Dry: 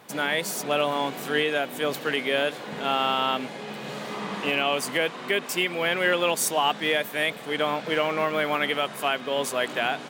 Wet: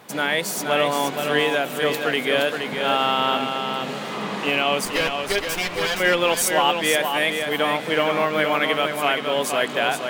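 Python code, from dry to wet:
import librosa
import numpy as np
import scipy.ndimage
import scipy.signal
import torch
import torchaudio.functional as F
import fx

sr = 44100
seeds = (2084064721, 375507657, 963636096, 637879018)

p1 = fx.lower_of_two(x, sr, delay_ms=9.8, at=(4.85, 6.0))
p2 = p1 + fx.echo_feedback(p1, sr, ms=471, feedback_pct=26, wet_db=-6.0, dry=0)
y = F.gain(torch.from_numpy(p2), 3.5).numpy()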